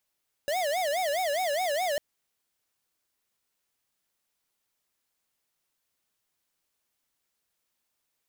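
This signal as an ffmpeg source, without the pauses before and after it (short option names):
-f lavfi -i "aevalsrc='0.0398*(2*lt(mod((659*t-95/(2*PI*4.8)*sin(2*PI*4.8*t)),1),0.5)-1)':d=1.5:s=44100"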